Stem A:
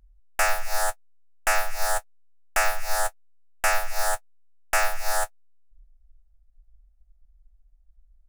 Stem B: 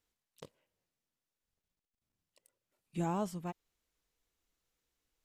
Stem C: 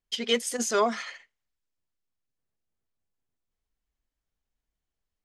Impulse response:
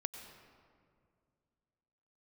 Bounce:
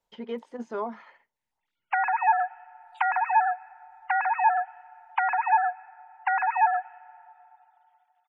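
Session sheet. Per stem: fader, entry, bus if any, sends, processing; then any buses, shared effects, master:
+1.0 dB, 1.55 s, bus A, send −16.5 dB, three sine waves on the formant tracks; downward compressor, threshold −23 dBFS, peak gain reduction 9 dB
−15.0 dB, 0.00 s, bus A, send −17.5 dB, high-pass on a step sequencer 6.6 Hz 590–4,500 Hz
−14.5 dB, 0.00 s, no bus, no send, low-pass filter 1,400 Hz 12 dB per octave; low-shelf EQ 440 Hz +7.5 dB
bus A: 0.0 dB, gate on every frequency bin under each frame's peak −20 dB strong; brickwall limiter −20 dBFS, peak gain reduction 7.5 dB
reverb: on, RT60 2.2 s, pre-delay 87 ms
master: parametric band 910 Hz +14 dB 0.25 octaves; multiband upward and downward compressor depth 40%

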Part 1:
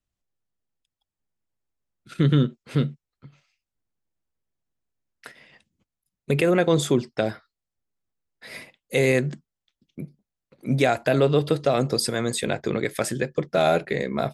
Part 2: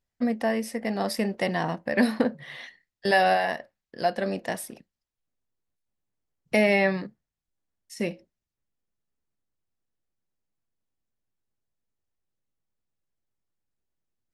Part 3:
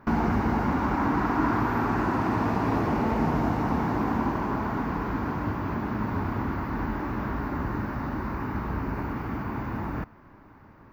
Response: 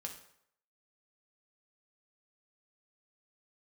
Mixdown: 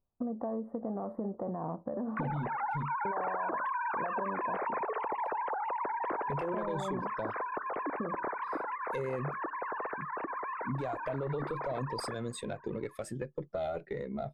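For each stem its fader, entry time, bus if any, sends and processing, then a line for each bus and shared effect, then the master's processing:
−5.5 dB, 0.00 s, bus A, no send, one-sided soft clipper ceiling −22.5 dBFS; every bin expanded away from the loudest bin 1.5 to 1
+1.5 dB, 0.00 s, no bus, no send, brickwall limiter −20.5 dBFS, peak gain reduction 11.5 dB; elliptic low-pass filter 1,200 Hz, stop band 50 dB; downward compressor 3 to 1, threshold −33 dBFS, peak gain reduction 7 dB
−6.5 dB, 2.10 s, bus A, send −12.5 dB, three sine waves on the formant tracks
bus A: 0.0 dB, noise gate with hold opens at −40 dBFS; brickwall limiter −23.5 dBFS, peak gain reduction 9 dB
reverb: on, RT60 0.70 s, pre-delay 3 ms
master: downward compressor 3 to 1, threshold −32 dBFS, peak gain reduction 6 dB

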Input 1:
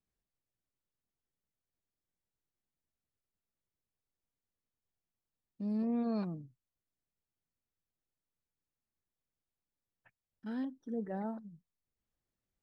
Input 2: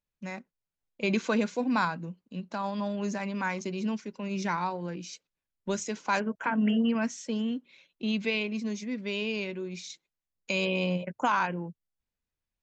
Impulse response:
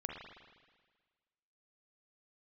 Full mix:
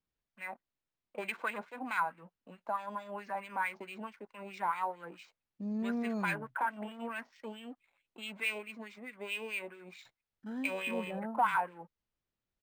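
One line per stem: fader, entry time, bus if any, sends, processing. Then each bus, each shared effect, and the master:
−1.5 dB, 0.00 s, no send, no processing
−3.0 dB, 0.15 s, no send, low-pass filter 5,200 Hz 24 dB per octave; leveller curve on the samples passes 2; LFO wah 4.6 Hz 730–2,400 Hz, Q 2.6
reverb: not used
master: linearly interpolated sample-rate reduction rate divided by 4×

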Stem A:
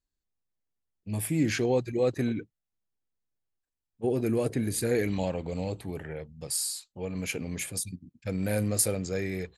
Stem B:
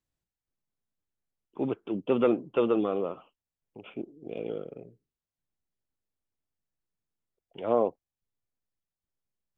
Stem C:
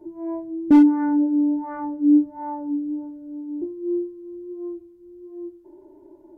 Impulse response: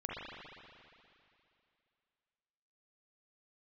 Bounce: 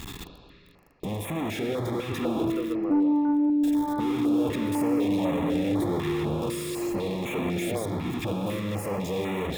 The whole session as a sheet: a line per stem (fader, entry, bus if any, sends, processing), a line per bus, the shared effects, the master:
+2.5 dB, 0.00 s, bus A, send −6.5 dB, sign of each sample alone; notch comb filter 1,500 Hz
−7.5 dB, 0.00 s, no bus, no send, no processing
−2.0 dB, 2.20 s, bus A, no send, compressor on every frequency bin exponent 0.6; low-pass filter 1,500 Hz 24 dB per octave
bus A: 0.0 dB, Chebyshev low-pass filter 3,600 Hz, order 6; brickwall limiter −18.5 dBFS, peak gain reduction 9 dB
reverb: on, RT60 2.6 s, pre-delay 39 ms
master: notch on a step sequencer 4 Hz 580–4,900 Hz

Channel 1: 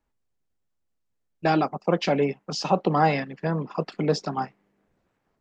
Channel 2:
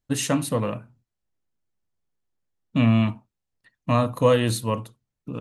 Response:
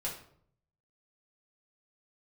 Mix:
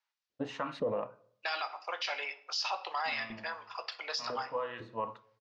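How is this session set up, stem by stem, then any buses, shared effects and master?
−3.0 dB, 0.00 s, send −7.5 dB, Bessel high-pass filter 1,300 Hz, order 4; parametric band 5,200 Hz +6 dB 1.9 octaves
+2.5 dB, 0.30 s, send −18.5 dB, auto-filter band-pass saw up 2 Hz 420–1,900 Hz; automatic ducking −20 dB, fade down 0.45 s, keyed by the first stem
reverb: on, RT60 0.60 s, pre-delay 3 ms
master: low-pass filter 5,500 Hz 24 dB per octave; brickwall limiter −24.5 dBFS, peak gain reduction 11 dB

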